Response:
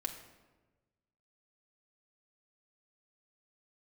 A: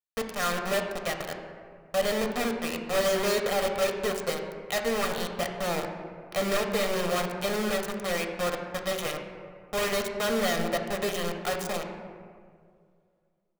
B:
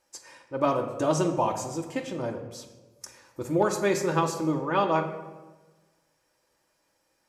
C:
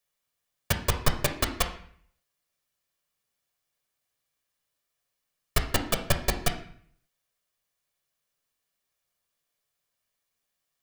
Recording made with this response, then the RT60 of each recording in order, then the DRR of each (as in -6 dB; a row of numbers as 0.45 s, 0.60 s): B; 2.1 s, 1.3 s, 0.55 s; 3.0 dB, 1.5 dB, 4.0 dB